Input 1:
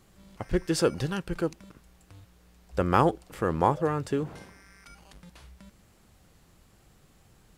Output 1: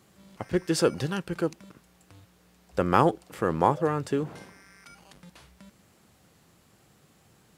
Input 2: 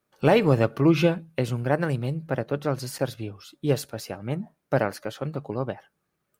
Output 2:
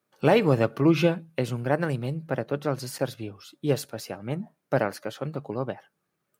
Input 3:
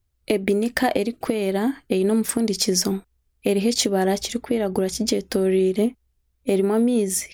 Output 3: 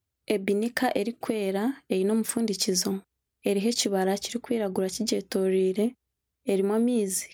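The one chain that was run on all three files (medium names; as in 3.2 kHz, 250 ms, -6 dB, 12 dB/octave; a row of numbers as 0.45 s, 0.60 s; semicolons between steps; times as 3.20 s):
high-pass 110 Hz 12 dB/octave; normalise loudness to -27 LUFS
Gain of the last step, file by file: +1.0 dB, -1.0 dB, -5.0 dB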